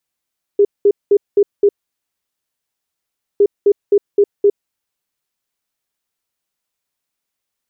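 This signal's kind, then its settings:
beeps in groups sine 406 Hz, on 0.06 s, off 0.20 s, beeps 5, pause 1.71 s, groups 2, −6.5 dBFS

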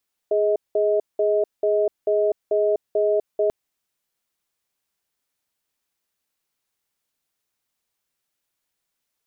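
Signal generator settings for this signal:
tone pair in a cadence 416 Hz, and 632 Hz, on 0.25 s, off 0.19 s, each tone −19.5 dBFS 3.19 s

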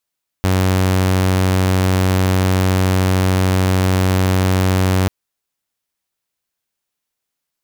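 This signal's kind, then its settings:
tone saw 93.5 Hz −10 dBFS 4.64 s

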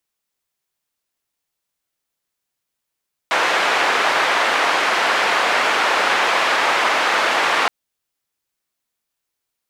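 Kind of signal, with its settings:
band-limited noise 570–1,800 Hz, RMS −17.5 dBFS 4.37 s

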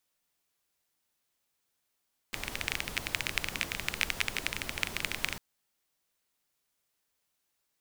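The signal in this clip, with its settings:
rain-like ticks over hiss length 3.05 s, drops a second 17, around 2,300 Hz, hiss −5 dB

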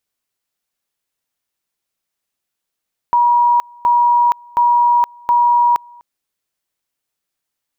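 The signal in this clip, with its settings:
tone at two levels in turn 959 Hz −9 dBFS, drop 28.5 dB, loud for 0.47 s, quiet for 0.25 s, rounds 4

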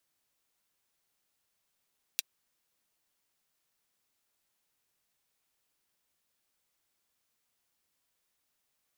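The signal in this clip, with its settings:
closed synth hi-hat, high-pass 3,000 Hz, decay 0.03 s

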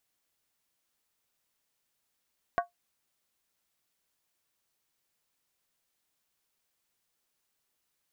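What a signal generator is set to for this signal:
struck skin, lowest mode 699 Hz, decay 0.14 s, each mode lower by 4.5 dB, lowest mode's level −20.5 dB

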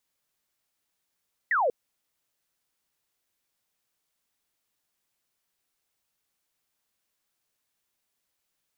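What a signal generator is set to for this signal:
single falling chirp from 2,000 Hz, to 450 Hz, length 0.19 s sine, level −21 dB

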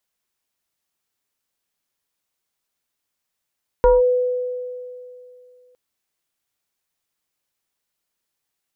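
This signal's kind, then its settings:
two-operator FM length 1.91 s, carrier 498 Hz, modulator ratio 0.92, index 0.86, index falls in 0.18 s linear, decay 2.62 s, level −8.5 dB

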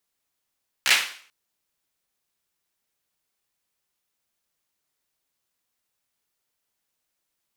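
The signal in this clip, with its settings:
synth clap length 0.44 s, apart 15 ms, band 2,300 Hz, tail 0.49 s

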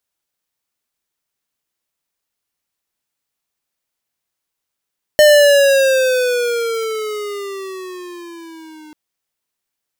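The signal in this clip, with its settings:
pitch glide with a swell square, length 3.74 s, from 606 Hz, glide −12 semitones, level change −31.5 dB, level −7 dB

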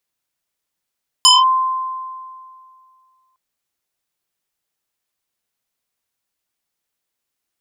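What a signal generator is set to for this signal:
two-operator FM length 2.11 s, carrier 1,040 Hz, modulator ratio 1.96, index 3.6, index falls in 0.19 s linear, decay 2.22 s, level −5 dB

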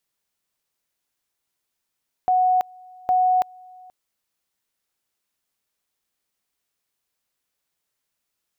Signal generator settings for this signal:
tone at two levels in turn 737 Hz −15 dBFS, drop 27 dB, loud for 0.33 s, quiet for 0.48 s, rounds 2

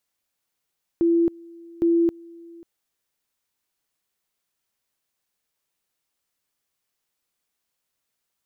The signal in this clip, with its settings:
tone at two levels in turn 337 Hz −15.5 dBFS, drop 25 dB, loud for 0.27 s, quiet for 0.54 s, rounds 2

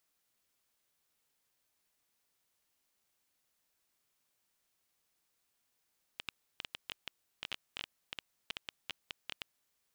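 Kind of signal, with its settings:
Geiger counter clicks 8.8 per second −21.5 dBFS 3.44 s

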